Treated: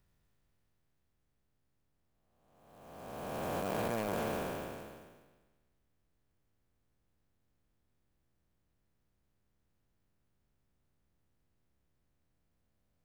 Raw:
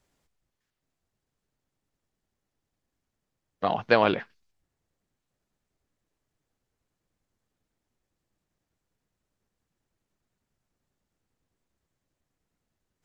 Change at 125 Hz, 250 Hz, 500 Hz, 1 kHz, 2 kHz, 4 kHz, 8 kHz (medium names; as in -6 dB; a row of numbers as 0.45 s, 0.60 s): -3.0 dB, -6.5 dB, -9.5 dB, -10.0 dB, -13.0 dB, -11.0 dB, no reading